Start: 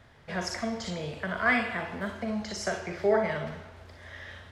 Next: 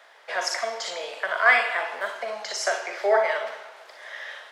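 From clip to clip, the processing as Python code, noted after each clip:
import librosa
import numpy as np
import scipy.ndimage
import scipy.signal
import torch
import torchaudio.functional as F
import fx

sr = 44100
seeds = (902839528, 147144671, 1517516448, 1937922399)

y = scipy.signal.sosfilt(scipy.signal.butter(4, 540.0, 'highpass', fs=sr, output='sos'), x)
y = y * librosa.db_to_amplitude(7.5)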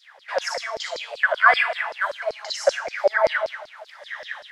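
y = fx.filter_lfo_highpass(x, sr, shape='saw_down', hz=5.2, low_hz=470.0, high_hz=5200.0, q=7.7)
y = y * librosa.db_to_amplitude(-4.0)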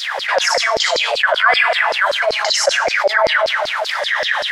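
y = fx.env_flatten(x, sr, amount_pct=70)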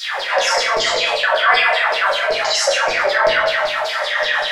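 y = fx.room_shoebox(x, sr, seeds[0], volume_m3=59.0, walls='mixed', distance_m=1.1)
y = y * librosa.db_to_amplitude(-6.0)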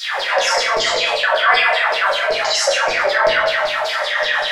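y = fx.recorder_agc(x, sr, target_db=-10.0, rise_db_per_s=9.0, max_gain_db=30)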